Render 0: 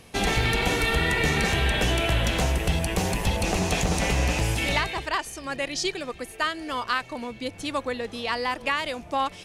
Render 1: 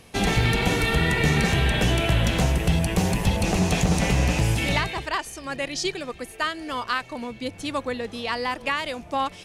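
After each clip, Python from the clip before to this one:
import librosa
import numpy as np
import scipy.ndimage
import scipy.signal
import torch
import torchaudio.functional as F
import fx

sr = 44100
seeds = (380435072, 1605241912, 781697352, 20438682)

y = fx.dynamic_eq(x, sr, hz=150.0, q=0.91, threshold_db=-40.0, ratio=4.0, max_db=7)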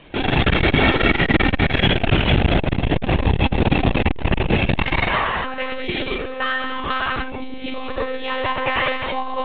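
y = fx.rev_gated(x, sr, seeds[0], gate_ms=310, shape='flat', drr_db=-4.0)
y = fx.lpc_monotone(y, sr, seeds[1], pitch_hz=260.0, order=16)
y = fx.transformer_sat(y, sr, knee_hz=210.0)
y = y * 10.0 ** (3.5 / 20.0)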